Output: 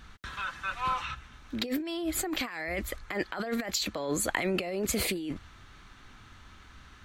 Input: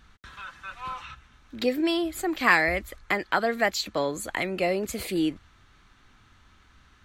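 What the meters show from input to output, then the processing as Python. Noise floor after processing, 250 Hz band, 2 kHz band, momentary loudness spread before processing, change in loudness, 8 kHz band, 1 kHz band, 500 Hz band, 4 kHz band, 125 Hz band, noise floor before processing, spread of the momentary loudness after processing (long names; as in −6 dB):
−53 dBFS, −4.5 dB, −8.5 dB, 18 LU, −6.0 dB, +4.0 dB, −6.0 dB, −6.5 dB, −2.0 dB, −1.0 dB, −59 dBFS, 9 LU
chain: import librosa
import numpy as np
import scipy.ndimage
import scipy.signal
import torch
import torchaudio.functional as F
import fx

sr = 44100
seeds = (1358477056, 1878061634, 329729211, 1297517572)

y = fx.over_compress(x, sr, threshold_db=-32.0, ratio=-1.0)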